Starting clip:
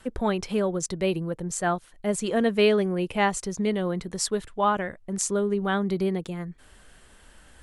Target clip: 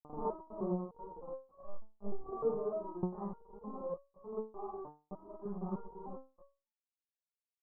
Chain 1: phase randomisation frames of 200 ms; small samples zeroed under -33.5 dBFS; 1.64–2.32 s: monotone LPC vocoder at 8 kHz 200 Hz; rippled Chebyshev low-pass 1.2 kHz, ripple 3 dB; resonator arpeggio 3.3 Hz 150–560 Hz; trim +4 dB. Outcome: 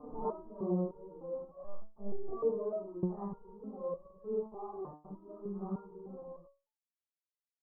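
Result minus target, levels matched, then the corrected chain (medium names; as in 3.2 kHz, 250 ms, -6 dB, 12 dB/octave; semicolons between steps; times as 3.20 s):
small samples zeroed: distortion -11 dB
phase randomisation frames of 200 ms; small samples zeroed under -25 dBFS; 1.64–2.32 s: monotone LPC vocoder at 8 kHz 200 Hz; rippled Chebyshev low-pass 1.2 kHz, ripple 3 dB; resonator arpeggio 3.3 Hz 150–560 Hz; trim +4 dB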